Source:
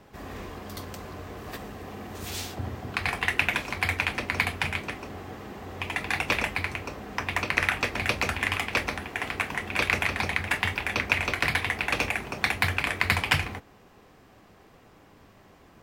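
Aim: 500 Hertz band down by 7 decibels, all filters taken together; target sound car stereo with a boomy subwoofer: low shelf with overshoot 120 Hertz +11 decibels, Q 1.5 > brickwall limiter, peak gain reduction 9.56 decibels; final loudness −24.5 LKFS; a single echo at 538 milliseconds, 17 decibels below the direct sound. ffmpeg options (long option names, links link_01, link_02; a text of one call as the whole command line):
ffmpeg -i in.wav -af "lowshelf=frequency=120:width_type=q:width=1.5:gain=11,equalizer=frequency=500:width_type=o:gain=-8.5,aecho=1:1:538:0.141,volume=4dB,alimiter=limit=-10dB:level=0:latency=1" out.wav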